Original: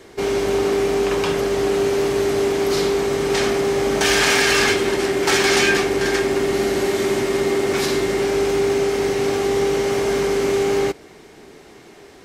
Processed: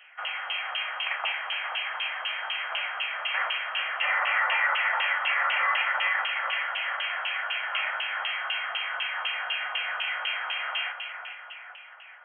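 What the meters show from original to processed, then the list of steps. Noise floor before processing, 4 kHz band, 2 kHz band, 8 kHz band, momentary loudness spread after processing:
-44 dBFS, -5.0 dB, -2.5 dB, under -40 dB, 9 LU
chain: echo with dull and thin repeats by turns 0.208 s, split 910 Hz, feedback 72%, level -4.5 dB; LFO high-pass saw up 4 Hz 800–2700 Hz; limiter -9.5 dBFS, peak gain reduction 7 dB; inverted band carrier 3600 Hz; steep high-pass 600 Hz 48 dB/oct; gain -5.5 dB

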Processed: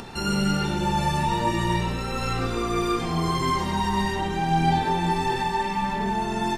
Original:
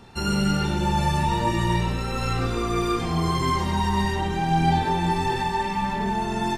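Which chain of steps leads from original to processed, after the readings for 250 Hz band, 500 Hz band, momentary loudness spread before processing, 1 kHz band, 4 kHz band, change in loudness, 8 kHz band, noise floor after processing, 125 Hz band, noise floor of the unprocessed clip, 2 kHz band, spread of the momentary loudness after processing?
-1.0 dB, 0.0 dB, 4 LU, 0.0 dB, 0.0 dB, -1.0 dB, 0.0 dB, -29 dBFS, -2.5 dB, -28 dBFS, 0.0 dB, 4 LU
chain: bell 80 Hz -6.5 dB 1.1 oct; upward compressor, threshold -30 dBFS

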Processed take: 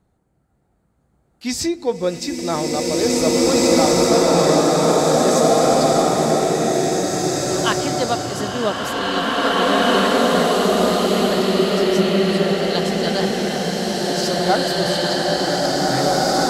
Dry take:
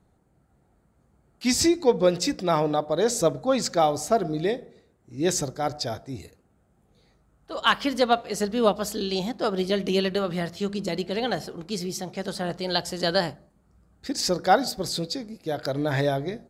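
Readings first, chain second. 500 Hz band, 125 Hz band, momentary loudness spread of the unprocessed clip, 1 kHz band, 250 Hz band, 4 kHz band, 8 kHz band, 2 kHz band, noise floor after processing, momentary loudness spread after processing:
+8.5 dB, +7.5 dB, 10 LU, +8.0 dB, +8.5 dB, +8.5 dB, +8.5 dB, +8.5 dB, -64 dBFS, 7 LU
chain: bloom reverb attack 2.29 s, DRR -9.5 dB; gain -1 dB

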